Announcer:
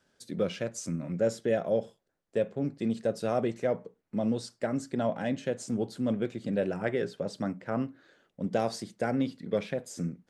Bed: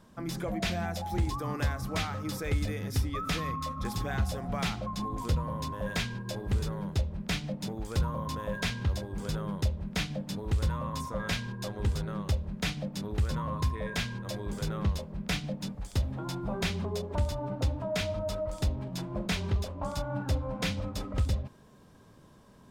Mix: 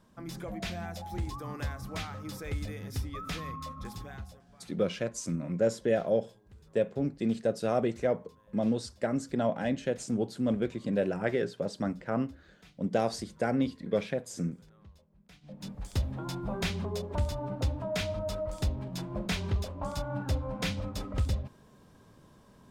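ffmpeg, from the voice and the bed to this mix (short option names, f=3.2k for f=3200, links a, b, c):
-filter_complex "[0:a]adelay=4400,volume=0.5dB[a];[1:a]volume=19.5dB,afade=t=out:st=3.7:d=0.75:silence=0.0944061,afade=t=in:st=15.41:d=0.41:silence=0.0562341[b];[a][b]amix=inputs=2:normalize=0"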